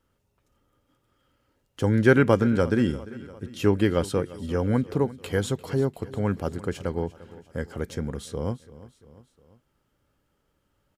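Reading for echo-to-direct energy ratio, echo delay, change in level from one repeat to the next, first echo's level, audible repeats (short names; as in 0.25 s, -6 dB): -17.0 dB, 0.347 s, -5.0 dB, -18.5 dB, 3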